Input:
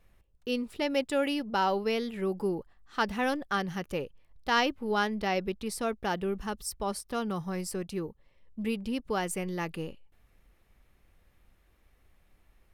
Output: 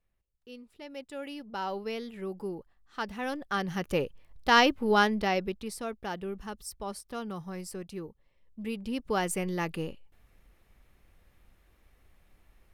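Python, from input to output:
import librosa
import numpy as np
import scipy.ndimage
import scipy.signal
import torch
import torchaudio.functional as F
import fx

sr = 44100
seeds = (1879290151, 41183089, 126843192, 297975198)

y = fx.gain(x, sr, db=fx.line((0.73, -16.0), (1.77, -6.0), (3.19, -6.0), (3.97, 5.0), (5.01, 5.0), (5.85, -5.0), (8.6, -5.0), (9.17, 2.0)))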